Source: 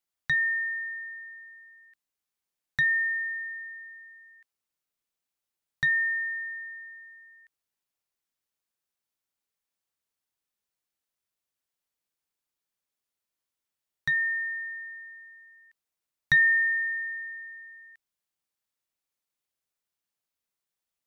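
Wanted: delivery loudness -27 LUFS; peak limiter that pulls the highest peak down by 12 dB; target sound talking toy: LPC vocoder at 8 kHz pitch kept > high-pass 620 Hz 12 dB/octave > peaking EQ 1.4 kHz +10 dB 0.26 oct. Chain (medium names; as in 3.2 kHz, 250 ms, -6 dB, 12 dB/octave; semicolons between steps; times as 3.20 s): peak limiter -26.5 dBFS; LPC vocoder at 8 kHz pitch kept; high-pass 620 Hz 12 dB/octave; peaking EQ 1.4 kHz +10 dB 0.26 oct; trim +3 dB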